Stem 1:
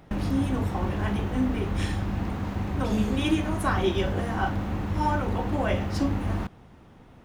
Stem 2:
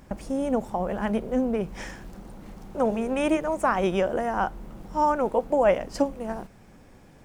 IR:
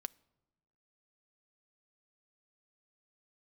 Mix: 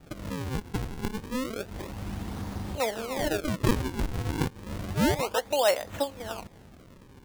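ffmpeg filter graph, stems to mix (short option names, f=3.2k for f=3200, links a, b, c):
-filter_complex "[0:a]acompressor=threshold=-30dB:ratio=6,volume=-1dB[a];[1:a]highpass=490,volume=-1,volume=-2dB,asplit=2[b][c];[c]apad=whole_len=319555[d];[a][d]sidechaincompress=threshold=-46dB:ratio=8:attack=16:release=172[e];[e][b]amix=inputs=2:normalize=0,adynamicequalizer=threshold=0.00891:dfrequency=2000:dqfactor=1:tfrequency=2000:tqfactor=1:attack=5:release=100:ratio=0.375:range=2:mode=boostabove:tftype=bell,acrusher=samples=41:mix=1:aa=0.000001:lfo=1:lforange=65.6:lforate=0.3"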